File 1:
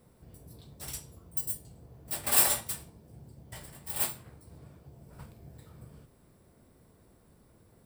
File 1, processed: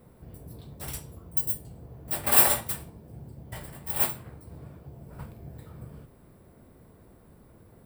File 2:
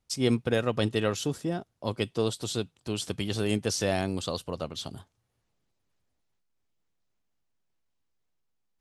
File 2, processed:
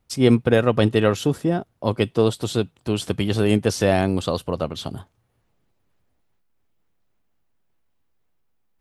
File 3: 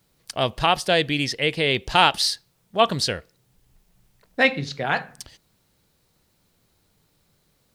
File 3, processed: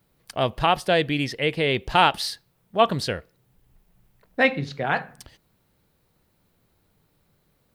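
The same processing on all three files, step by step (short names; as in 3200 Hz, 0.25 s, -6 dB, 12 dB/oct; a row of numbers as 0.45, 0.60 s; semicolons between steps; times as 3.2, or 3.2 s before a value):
bell 6200 Hz -9 dB 1.9 oct; normalise peaks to -3 dBFS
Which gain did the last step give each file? +7.0, +9.5, +0.5 dB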